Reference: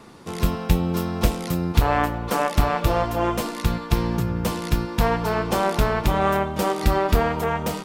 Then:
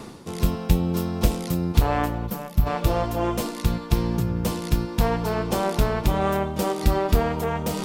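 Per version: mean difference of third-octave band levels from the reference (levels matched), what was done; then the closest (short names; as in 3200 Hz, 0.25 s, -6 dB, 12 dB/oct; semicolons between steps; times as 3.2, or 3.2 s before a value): 2.0 dB: spectral gain 2.27–2.67, 220–11000 Hz -11 dB; bell 1500 Hz -5.5 dB 2.2 oct; reverse; upward compressor, threshold -23 dBFS; reverse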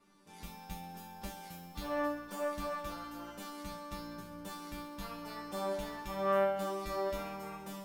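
7.5 dB: high shelf 6900 Hz +4.5 dB; resonator bank G3 fifth, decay 0.39 s; thinning echo 65 ms, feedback 74%, high-pass 180 Hz, level -9.5 dB; gain -4 dB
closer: first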